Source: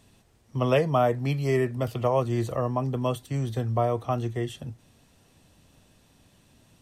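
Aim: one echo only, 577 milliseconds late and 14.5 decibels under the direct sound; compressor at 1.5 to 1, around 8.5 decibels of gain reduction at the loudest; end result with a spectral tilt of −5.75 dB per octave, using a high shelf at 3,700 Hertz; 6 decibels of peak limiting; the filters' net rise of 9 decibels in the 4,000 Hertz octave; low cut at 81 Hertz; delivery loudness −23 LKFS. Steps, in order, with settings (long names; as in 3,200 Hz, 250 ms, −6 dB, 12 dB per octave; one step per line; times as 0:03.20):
high-pass filter 81 Hz
high-shelf EQ 3,700 Hz +6.5 dB
parametric band 4,000 Hz +8.5 dB
downward compressor 1.5 to 1, threshold −41 dBFS
brickwall limiter −24.5 dBFS
single-tap delay 577 ms −14.5 dB
level +12 dB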